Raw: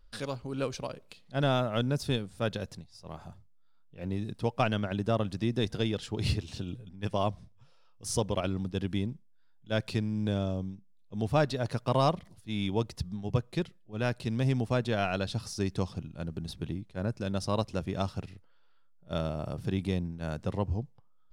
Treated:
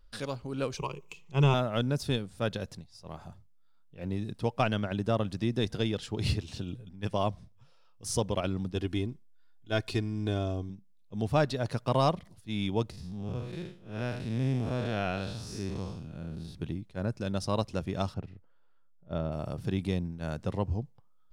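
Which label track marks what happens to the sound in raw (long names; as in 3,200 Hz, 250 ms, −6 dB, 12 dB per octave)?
0.770000	1.540000	EQ curve with evenly spaced ripples crests per octave 0.73, crest to trough 16 dB
8.750000	10.700000	comb filter 2.8 ms, depth 61%
12.900000	16.550000	spectrum smeared in time width 168 ms
18.140000	19.320000	low-pass filter 1,100 Hz 6 dB per octave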